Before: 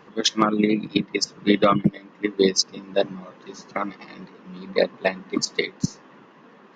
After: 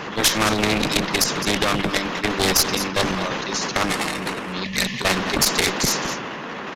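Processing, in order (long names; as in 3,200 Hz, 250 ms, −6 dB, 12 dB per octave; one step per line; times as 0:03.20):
0:03.84–0:04.53: running median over 9 samples
0:04.64–0:05.01: gain on a spectral selection 240–1,700 Hz −28 dB
in parallel at +2.5 dB: brickwall limiter −15 dBFS, peak gain reduction 10 dB
on the sum: transient designer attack −2 dB, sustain +10 dB
0:01.14–0:01.91: downward compressor 2 to 1, threshold −17 dBFS, peak gain reduction 5 dB
asymmetric clip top −21 dBFS
on a send: single-tap delay 211 ms −20 dB
on the sum: downsampling to 32,000 Hz
every bin compressed towards the loudest bin 2 to 1
level +3.5 dB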